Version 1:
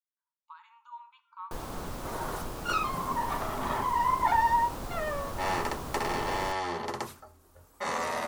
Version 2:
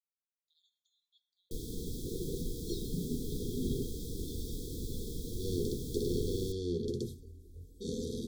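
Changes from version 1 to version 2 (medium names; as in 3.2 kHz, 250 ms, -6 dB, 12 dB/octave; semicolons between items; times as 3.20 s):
second sound: add tilt EQ -2.5 dB/octave; master: add brick-wall FIR band-stop 500–3200 Hz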